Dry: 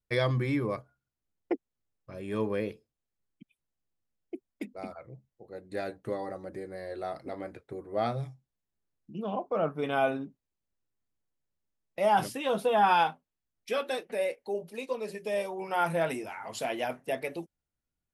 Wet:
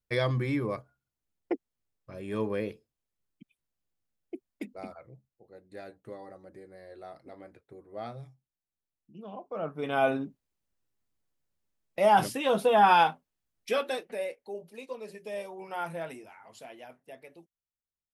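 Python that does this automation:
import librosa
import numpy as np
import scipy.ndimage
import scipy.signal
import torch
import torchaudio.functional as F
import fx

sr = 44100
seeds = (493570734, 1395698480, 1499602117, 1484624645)

y = fx.gain(x, sr, db=fx.line((4.72, -0.5), (5.69, -9.5), (9.39, -9.5), (10.12, 3.0), (13.7, 3.0), (14.39, -6.0), (15.7, -6.0), (16.85, -15.5)))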